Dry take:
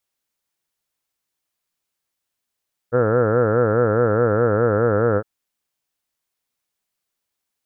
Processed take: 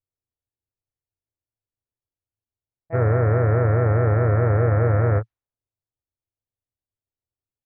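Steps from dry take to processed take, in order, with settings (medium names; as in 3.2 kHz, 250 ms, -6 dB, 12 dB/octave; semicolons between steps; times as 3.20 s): level-controlled noise filter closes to 490 Hz, open at -14 dBFS; harmony voices -4 st -11 dB, +5 st -7 dB; resonant low shelf 140 Hz +7 dB, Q 3; trim -6 dB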